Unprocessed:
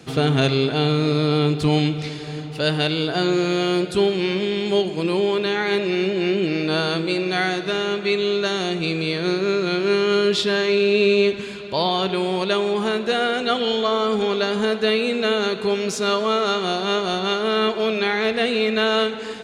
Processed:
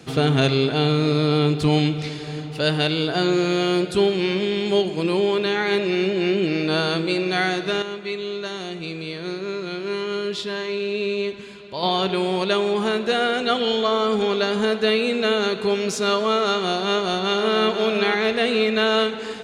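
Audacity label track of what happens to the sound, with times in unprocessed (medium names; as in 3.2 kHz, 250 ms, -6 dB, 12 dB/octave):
7.820000	11.830000	feedback comb 1 kHz, decay 0.18 s
16.850000	17.650000	echo throw 490 ms, feedback 45%, level -8 dB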